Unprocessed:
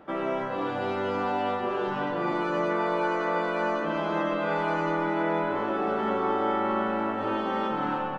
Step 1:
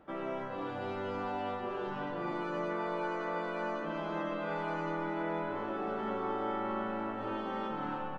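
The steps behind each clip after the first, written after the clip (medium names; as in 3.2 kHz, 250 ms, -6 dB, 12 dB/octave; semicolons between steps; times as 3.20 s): bass shelf 75 Hz +11.5 dB; trim -9 dB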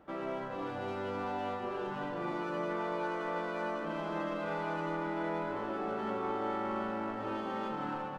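sliding maximum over 3 samples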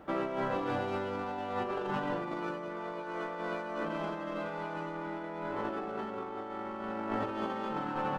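compressor with a negative ratio -39 dBFS, ratio -0.5; trim +4 dB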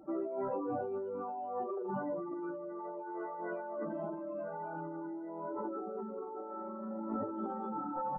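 spectral contrast enhancement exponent 2.9; trim -2.5 dB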